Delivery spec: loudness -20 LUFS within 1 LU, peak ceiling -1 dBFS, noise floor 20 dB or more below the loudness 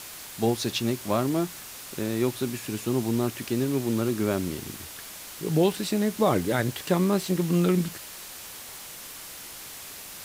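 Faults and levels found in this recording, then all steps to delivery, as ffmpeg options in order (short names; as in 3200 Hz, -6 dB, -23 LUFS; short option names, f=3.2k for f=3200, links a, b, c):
noise floor -42 dBFS; noise floor target -47 dBFS; loudness -26.5 LUFS; peak -10.0 dBFS; loudness target -20.0 LUFS
-> -af "afftdn=nr=6:nf=-42"
-af "volume=6.5dB"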